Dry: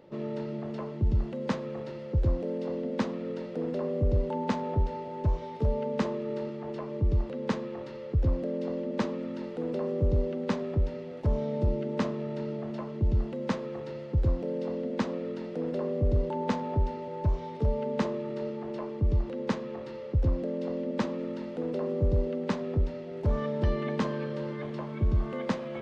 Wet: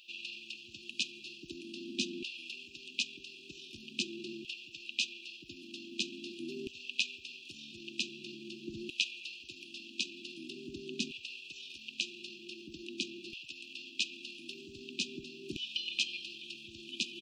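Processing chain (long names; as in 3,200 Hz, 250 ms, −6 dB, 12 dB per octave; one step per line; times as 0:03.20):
auto-filter high-pass saw down 0.3 Hz 700–2,700 Hz
tempo change 1.5×
linear-phase brick-wall band-stop 380–2,400 Hz
level +11 dB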